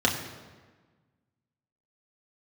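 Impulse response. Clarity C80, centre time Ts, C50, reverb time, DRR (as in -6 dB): 8.5 dB, 34 ms, 7.0 dB, 1.4 s, -2.0 dB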